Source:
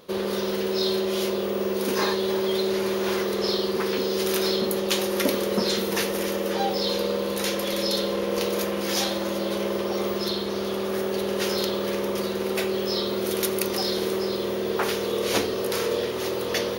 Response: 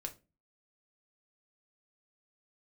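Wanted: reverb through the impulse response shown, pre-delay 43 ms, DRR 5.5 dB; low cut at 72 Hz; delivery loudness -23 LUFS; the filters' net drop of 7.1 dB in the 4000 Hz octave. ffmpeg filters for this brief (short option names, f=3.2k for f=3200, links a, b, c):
-filter_complex "[0:a]highpass=72,equalizer=f=4k:t=o:g=-9,asplit=2[a][b];[1:a]atrim=start_sample=2205,adelay=43[c];[b][c]afir=irnorm=-1:irlink=0,volume=-3.5dB[d];[a][d]amix=inputs=2:normalize=0,volume=2.5dB"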